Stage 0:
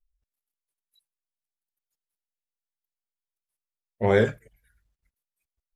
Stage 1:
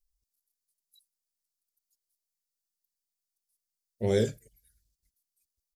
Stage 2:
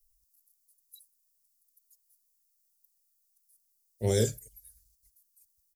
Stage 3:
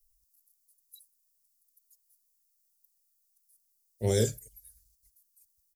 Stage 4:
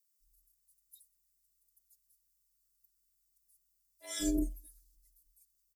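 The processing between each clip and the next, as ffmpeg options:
-af "firequalizer=gain_entry='entry(390,0);entry(1000,-16);entry(4700,12)':delay=0.05:min_phase=1,volume=0.631"
-filter_complex "[0:a]acrossover=split=160|3900[s0][s1][s2];[s0]aecho=1:1:2:0.91[s3];[s1]tremolo=f=7.1:d=0.38[s4];[s2]crystalizer=i=3:c=0[s5];[s3][s4][s5]amix=inputs=3:normalize=0"
-af anull
-filter_complex "[0:a]afftfilt=real='hypot(re,im)*cos(PI*b)':imag='0':win_size=512:overlap=0.75,afreqshift=-42,acrossover=split=740[s0][s1];[s0]adelay=180[s2];[s2][s1]amix=inputs=2:normalize=0"

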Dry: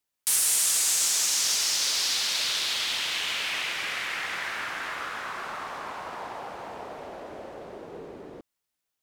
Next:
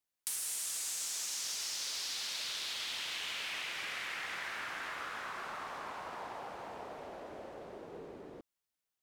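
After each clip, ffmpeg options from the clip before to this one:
-af "acompressor=threshold=0.0316:ratio=4,volume=0.473"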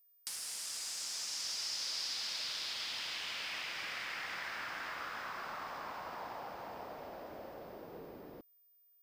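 -af "highshelf=f=3600:g=-6.5,aeval=exprs='val(0)+0.00126*sin(2*PI*15000*n/s)':c=same,equalizer=f=400:t=o:w=0.33:g=-4,equalizer=f=5000:t=o:w=0.33:g=9,equalizer=f=16000:t=o:w=0.33:g=-9"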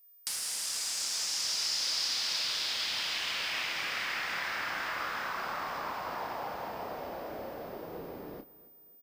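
-filter_complex "[0:a]asplit=2[s0][s1];[s1]adelay=30,volume=0.376[s2];[s0][s2]amix=inputs=2:normalize=0,aecho=1:1:273|546|819:0.106|0.0455|0.0196,volume=2.11"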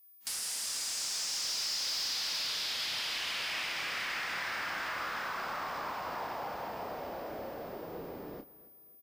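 -af "asoftclip=type=tanh:threshold=0.0376" -ar 48000 -c:a wmav2 -b:a 128k

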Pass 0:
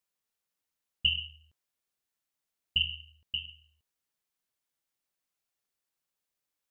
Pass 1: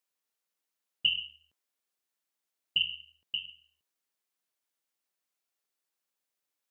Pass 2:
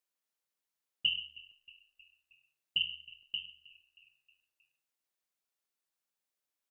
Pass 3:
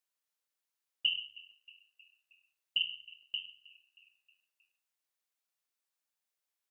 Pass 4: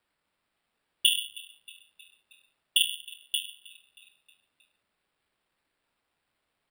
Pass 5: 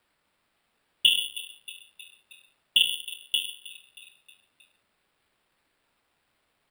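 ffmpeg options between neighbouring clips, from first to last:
-af "highpass=220"
-filter_complex "[0:a]asplit=5[s0][s1][s2][s3][s4];[s1]adelay=315,afreqshift=-53,volume=0.0891[s5];[s2]adelay=630,afreqshift=-106,volume=0.0507[s6];[s3]adelay=945,afreqshift=-159,volume=0.0288[s7];[s4]adelay=1260,afreqshift=-212,volume=0.0166[s8];[s0][s5][s6][s7][s8]amix=inputs=5:normalize=0,volume=0.668"
-af "highpass=f=530:p=1"
-af "acrusher=samples=7:mix=1:aa=0.000001,volume=2.51"
-filter_complex "[0:a]acrossover=split=3500[s0][s1];[s1]acompressor=threshold=0.0178:ratio=4:attack=1:release=60[s2];[s0][s2]amix=inputs=2:normalize=0,volume=2.11"

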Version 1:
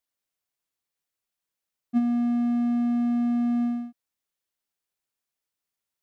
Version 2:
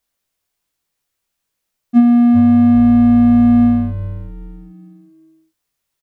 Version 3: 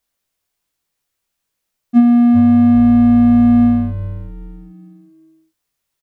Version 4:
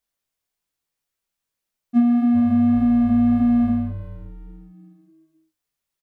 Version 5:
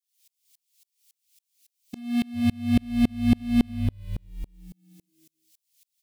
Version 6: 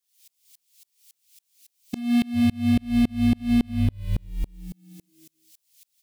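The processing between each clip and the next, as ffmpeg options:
-filter_complex "[0:a]lowshelf=f=75:g=9,asplit=2[s0][s1];[s1]adelay=21,volume=0.631[s2];[s0][s2]amix=inputs=2:normalize=0,asplit=5[s3][s4][s5][s6][s7];[s4]adelay=398,afreqshift=-140,volume=0.224[s8];[s5]adelay=796,afreqshift=-280,volume=0.0851[s9];[s6]adelay=1194,afreqshift=-420,volume=0.0324[s10];[s7]adelay=1592,afreqshift=-560,volume=0.0123[s11];[s3][s8][s9][s10][s11]amix=inputs=5:normalize=0,volume=2.82"
-af anull
-af "flanger=delay=4.6:depth=3.5:regen=-66:speed=1.7:shape=sinusoidal,volume=0.708"
-af "asubboost=boost=3.5:cutoff=200,aexciter=amount=13.3:drive=5.5:freq=2100,aeval=exprs='val(0)*pow(10,-34*if(lt(mod(-3.6*n/s,1),2*abs(-3.6)/1000),1-mod(-3.6*n/s,1)/(2*abs(-3.6)/1000),(mod(-3.6*n/s,1)-2*abs(-3.6)/1000)/(1-2*abs(-3.6)/1000))/20)':c=same"
-af "acompressor=threshold=0.0631:ratio=10,volume=2.37"

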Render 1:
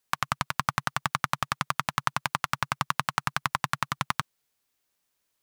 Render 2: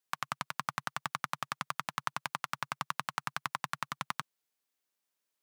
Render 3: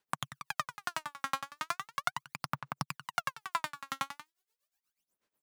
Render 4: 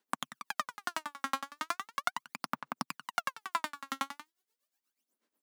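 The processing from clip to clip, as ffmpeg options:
-af "highpass=170,volume=0.398"
-af "tremolo=f=8.2:d=0.9,aphaser=in_gain=1:out_gain=1:delay=3.7:decay=0.79:speed=0.38:type=sinusoidal"
-af "lowshelf=f=170:t=q:w=3:g=-12.5,bandreject=f=2500:w=26"

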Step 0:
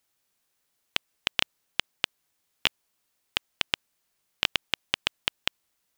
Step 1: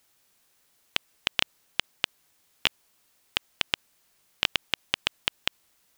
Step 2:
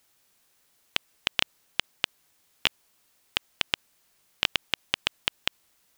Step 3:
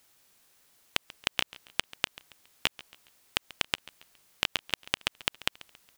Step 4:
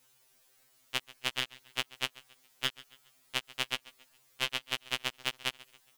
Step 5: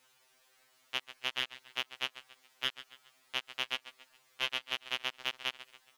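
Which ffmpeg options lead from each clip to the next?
-af "alimiter=level_in=3.16:limit=0.891:release=50:level=0:latency=1,volume=0.891"
-af anull
-af "acompressor=threshold=0.0501:ratio=6,aecho=1:1:138|276|414:0.1|0.041|0.0168,volume=1.33"
-af "afftfilt=real='re*2.45*eq(mod(b,6),0)':imag='im*2.45*eq(mod(b,6),0)':win_size=2048:overlap=0.75"
-filter_complex "[0:a]asplit=2[s0][s1];[s1]highpass=f=720:p=1,volume=5.62,asoftclip=type=tanh:threshold=0.335[s2];[s0][s2]amix=inputs=2:normalize=0,lowpass=f=2600:p=1,volume=0.501,volume=0.668"

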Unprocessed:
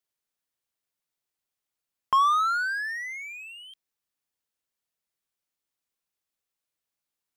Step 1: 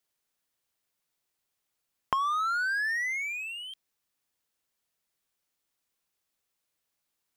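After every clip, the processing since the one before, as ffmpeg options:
-af "acompressor=threshold=0.0282:ratio=10,volume=1.78"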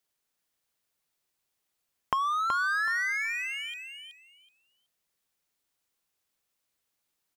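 -af "aecho=1:1:375|750|1125:0.501|0.0952|0.0181"

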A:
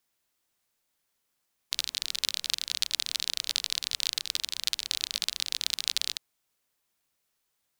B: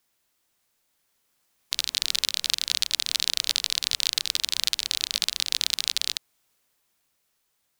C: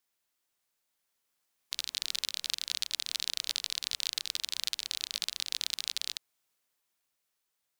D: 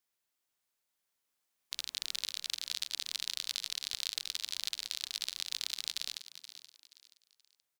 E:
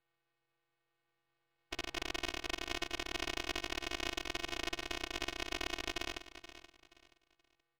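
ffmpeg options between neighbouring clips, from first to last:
-af "alimiter=limit=0.282:level=0:latency=1:release=371,dynaudnorm=f=300:g=11:m=1.78,volume=1.78"
-af "lowshelf=f=300:g=-5.5,volume=0.376"
-filter_complex "[0:a]asplit=4[s0][s1][s2][s3];[s1]adelay=477,afreqshift=130,volume=0.237[s4];[s2]adelay=954,afreqshift=260,volume=0.0759[s5];[s3]adelay=1431,afreqshift=390,volume=0.0243[s6];[s0][s4][s5][s6]amix=inputs=4:normalize=0,volume=0.668"
-af "afftfilt=real='hypot(re,im)*cos(PI*b)':imag='0':win_size=512:overlap=0.75,highpass=f=200:t=q:w=0.5412,highpass=f=200:t=q:w=1.307,lowpass=f=2900:t=q:w=0.5176,lowpass=f=2900:t=q:w=0.7071,lowpass=f=2900:t=q:w=1.932,afreqshift=-210,aeval=exprs='max(val(0),0)':c=same,volume=5.96"

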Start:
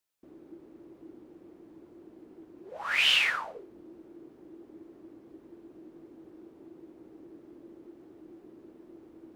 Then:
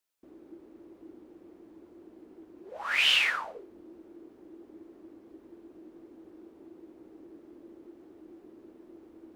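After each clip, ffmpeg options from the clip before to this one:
-af "equalizer=f=140:t=o:w=0.34:g=-13.5"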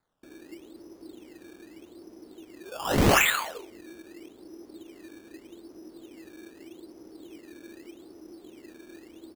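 -filter_complex "[0:a]asplit=2[s0][s1];[s1]adelay=180.8,volume=0.112,highshelf=f=4000:g=-4.07[s2];[s0][s2]amix=inputs=2:normalize=0,acrusher=samples=15:mix=1:aa=0.000001:lfo=1:lforange=15:lforate=0.82,volume=1.58"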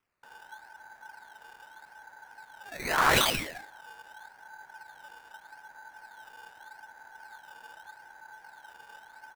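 -af "aeval=exprs='val(0)*sin(2*PI*1200*n/s)':c=same"

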